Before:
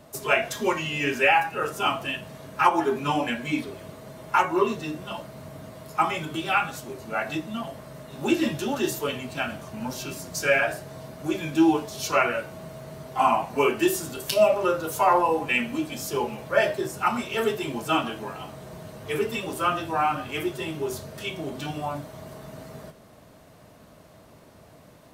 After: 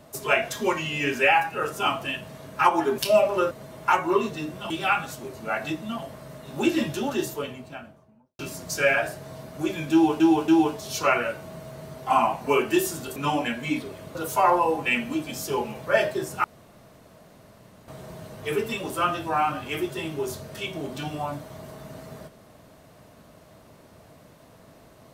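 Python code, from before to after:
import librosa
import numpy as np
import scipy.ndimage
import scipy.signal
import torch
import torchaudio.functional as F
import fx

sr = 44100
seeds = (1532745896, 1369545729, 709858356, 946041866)

y = fx.studio_fade_out(x, sr, start_s=8.57, length_s=1.47)
y = fx.edit(y, sr, fx.swap(start_s=2.98, length_s=0.99, other_s=14.25, other_length_s=0.53),
    fx.cut(start_s=5.16, length_s=1.19),
    fx.repeat(start_s=11.57, length_s=0.28, count=3),
    fx.room_tone_fill(start_s=17.07, length_s=1.44), tone=tone)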